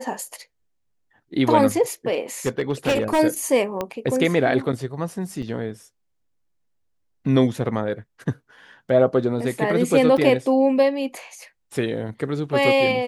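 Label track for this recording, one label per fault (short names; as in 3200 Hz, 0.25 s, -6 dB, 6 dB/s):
2.460000	3.200000	clipped -15.5 dBFS
3.810000	3.810000	pop -12 dBFS
5.420000	5.430000	gap 6.1 ms
10.170000	10.180000	gap 5.7 ms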